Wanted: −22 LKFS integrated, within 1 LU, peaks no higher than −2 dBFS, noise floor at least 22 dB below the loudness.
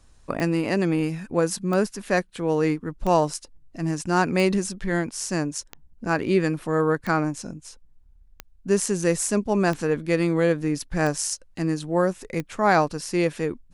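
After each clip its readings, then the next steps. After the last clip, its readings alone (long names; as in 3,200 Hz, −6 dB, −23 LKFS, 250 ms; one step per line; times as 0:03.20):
number of clicks 11; integrated loudness −24.0 LKFS; sample peak −7.0 dBFS; target loudness −22.0 LKFS
→ click removal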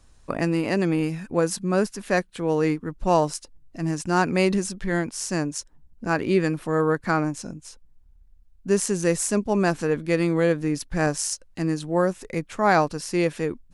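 number of clicks 1; integrated loudness −24.0 LKFS; sample peak −7.0 dBFS; target loudness −22.0 LKFS
→ level +2 dB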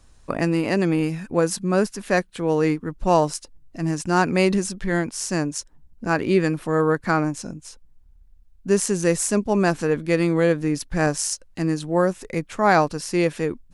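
integrated loudness −22.0 LKFS; sample peak −5.0 dBFS; background noise floor −53 dBFS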